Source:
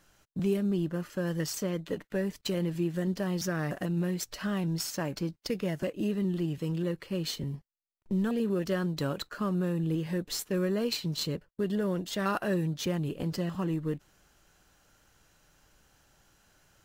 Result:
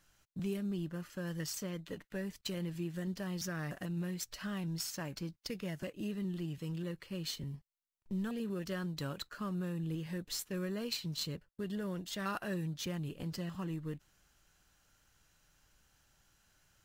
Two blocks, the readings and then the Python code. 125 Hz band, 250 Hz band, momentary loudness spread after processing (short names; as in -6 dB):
-7.5 dB, -8.0 dB, 5 LU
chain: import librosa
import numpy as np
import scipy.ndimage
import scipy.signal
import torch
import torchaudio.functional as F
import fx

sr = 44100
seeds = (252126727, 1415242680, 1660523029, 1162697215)

y = fx.peak_eq(x, sr, hz=450.0, db=-6.5, octaves=2.5)
y = y * librosa.db_to_amplitude(-4.5)